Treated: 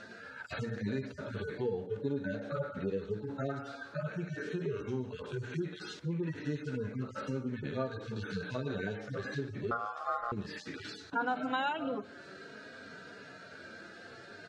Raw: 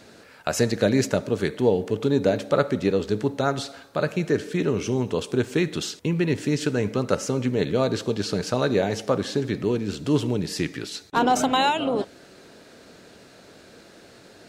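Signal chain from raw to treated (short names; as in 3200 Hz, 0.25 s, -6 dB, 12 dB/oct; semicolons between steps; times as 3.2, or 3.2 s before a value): median-filter separation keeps harmonic; LPF 5500 Hz 12 dB/oct; 9.71–10.32 ring modulator 940 Hz; bell 1500 Hz +11 dB 0.57 oct; compressor 2.5:1, threshold -37 dBFS, peak gain reduction 15 dB; notches 60/120/180/240 Hz; echo 0.143 s -22 dB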